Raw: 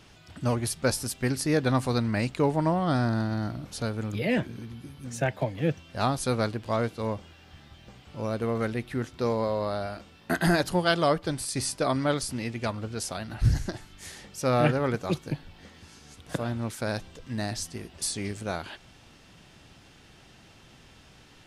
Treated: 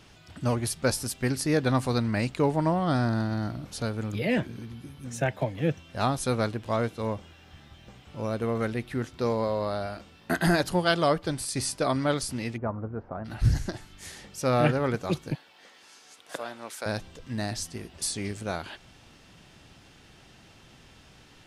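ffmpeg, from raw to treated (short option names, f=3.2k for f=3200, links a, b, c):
-filter_complex "[0:a]asettb=1/sr,asplit=3[a][b][c];[a]atrim=end=4.844[d];[b]atrim=start=4.84:end=8.7,asetpts=PTS-STARTPTS,afade=t=in:d=0.004:c=qsin,afade=t=out:st=3.856:d=0.004:c=qsin,bandreject=f=4.6k:w=12[e];[c]atrim=start=8.696[f];[d][e]acrossfade=d=0.004:c1=hsin:c2=qsin[g];[g][f]acrossfade=d=0.004:c1=qsin:c2=hsin,asplit=3[h][i][j];[h]afade=t=out:st=12.56:d=0.02[k];[i]lowpass=f=1.3k:w=0.5412,lowpass=f=1.3k:w=1.3066,afade=t=in:st=12.56:d=0.02,afade=t=out:st=13.24:d=0.02[l];[j]afade=t=in:st=13.24:d=0.02[m];[k][l][m]amix=inputs=3:normalize=0,asettb=1/sr,asplit=3[n][o][p];[n]atrim=end=15.354[q];[o]atrim=start=15.35:end=16.86,asetpts=PTS-STARTPTS,afade=t=in:d=0.004:c=qsin,afade=t=out:st=1.506:d=0.004:c=qsin,highpass=530[r];[p]atrim=start=16.856[s];[q][r]acrossfade=d=0.004:c1=hsin:c2=qsin[t];[t][s]acrossfade=d=0.004:c1=qsin:c2=hsin"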